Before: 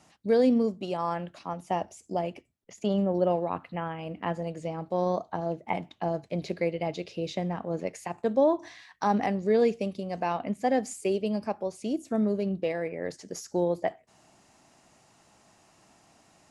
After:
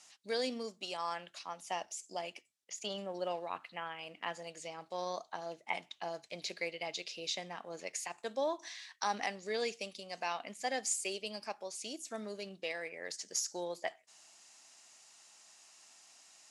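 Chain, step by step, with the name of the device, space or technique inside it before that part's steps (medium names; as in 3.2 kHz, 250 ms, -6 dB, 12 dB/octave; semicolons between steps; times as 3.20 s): piezo pickup straight into a mixer (low-pass 7 kHz 12 dB/octave; differentiator); trim +10 dB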